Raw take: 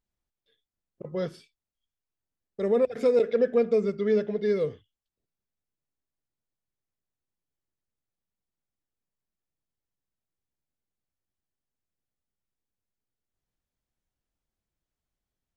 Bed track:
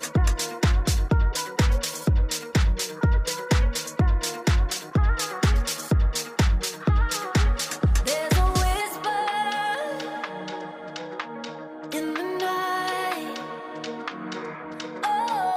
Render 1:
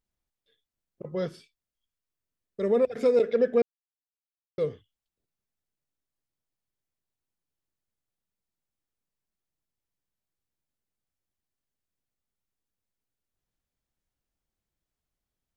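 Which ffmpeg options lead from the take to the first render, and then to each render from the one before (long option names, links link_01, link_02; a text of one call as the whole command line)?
ffmpeg -i in.wav -filter_complex "[0:a]asettb=1/sr,asplit=3[link_01][link_02][link_03];[link_01]atrim=end=1.304[link_04];[link_02]atrim=start=1.3:end=2.7,asetpts=PTS-STARTPTS,afade=type=in:duration=0.004:curve=qsin,afade=type=out:start_time=1.396:duration=0.004:curve=qsin,asuperstop=centerf=810:order=4:qfactor=7.4[link_05];[link_03]atrim=start=2.696[link_06];[link_04][link_05]acrossfade=duration=0.004:curve1=hsin:curve2=qsin[link_07];[link_07][link_06]acrossfade=duration=0.004:curve1=qsin:curve2=hsin,asplit=3[link_08][link_09][link_10];[link_08]atrim=end=3.62,asetpts=PTS-STARTPTS,afade=type=out:start_time=3.616:duration=0.004:curve=hsin[link_11];[link_09]atrim=start=3.62:end=4.58,asetpts=PTS-STARTPTS,volume=0[link_12];[link_10]atrim=start=4.58,asetpts=PTS-STARTPTS,afade=type=in:duration=0.004:curve=hsin[link_13];[link_11][link_12][link_13]concat=n=3:v=0:a=1" out.wav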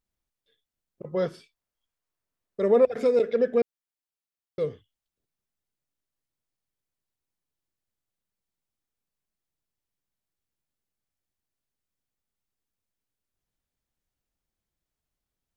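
ffmpeg -i in.wav -filter_complex "[0:a]asettb=1/sr,asplit=3[link_01][link_02][link_03];[link_01]atrim=end=1.134[link_04];[link_02]atrim=start=1.13:end=3.03,asetpts=PTS-STARTPTS,afade=type=in:duration=0.004:curve=qsin,afade=type=out:start_time=1.896:duration=0.004:curve=qsin,equalizer=frequency=850:width=0.61:gain=6.5[link_05];[link_03]atrim=start=3.026[link_06];[link_04][link_05]acrossfade=duration=0.004:curve1=hsin:curve2=qsin[link_07];[link_07][link_06]acrossfade=duration=0.004:curve1=qsin:curve2=hsin" out.wav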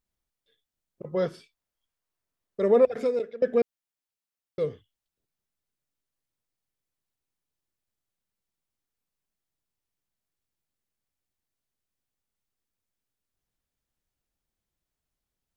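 ffmpeg -i in.wav -filter_complex "[0:a]asplit=2[link_01][link_02];[link_01]atrim=end=3.42,asetpts=PTS-STARTPTS,afade=type=out:start_time=2.88:duration=0.54:silence=0.0630957[link_03];[link_02]atrim=start=3.42,asetpts=PTS-STARTPTS,afade=type=in:duration=0.004:curve=hsin:silence=0.0630957[link_04];[link_03][link_04]concat=n=2:v=0:a=1" out.wav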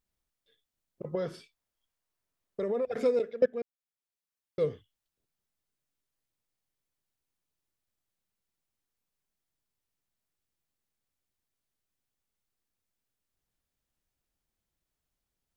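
ffmpeg -i in.wav -filter_complex "[0:a]asettb=1/sr,asplit=3[link_01][link_02][link_03];[link_01]atrim=end=1.154[link_04];[link_02]atrim=start=1.15:end=2.91,asetpts=PTS-STARTPTS,afade=type=in:duration=0.004:curve=qsin,afade=type=out:start_time=1.756:duration=0.004:curve=qsin,acompressor=threshold=-28dB:ratio=6:attack=3.2:release=140:knee=1:detection=peak[link_05];[link_03]atrim=start=2.906[link_06];[link_04][link_05]acrossfade=duration=0.004:curve1=hsin:curve2=qsin[link_07];[link_07][link_06]acrossfade=duration=0.004:curve1=qsin:curve2=hsin,asplit=2[link_08][link_09];[link_08]atrim=end=3.46,asetpts=PTS-STARTPTS,afade=type=out:start_time=3.456:duration=0.004:curve=hsin:silence=0.133352[link_10];[link_09]atrim=start=3.46,asetpts=PTS-STARTPTS,afade=type=in:duration=1.26:silence=0.133352[link_11];[link_10][link_11]concat=n=2:v=0:a=1" out.wav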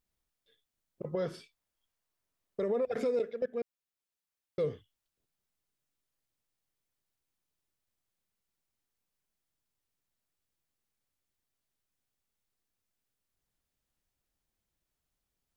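ffmpeg -i in.wav -af "alimiter=limit=-23.5dB:level=0:latency=1:release=57" out.wav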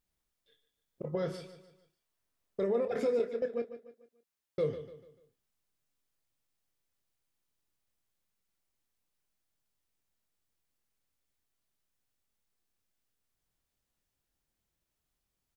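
ffmpeg -i in.wav -filter_complex "[0:a]asplit=2[link_01][link_02];[link_02]adelay=26,volume=-9dB[link_03];[link_01][link_03]amix=inputs=2:normalize=0,aecho=1:1:147|294|441|588:0.237|0.0949|0.0379|0.0152" out.wav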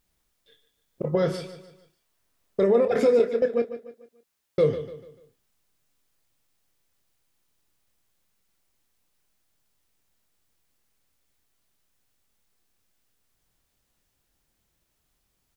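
ffmpeg -i in.wav -af "volume=10.5dB" out.wav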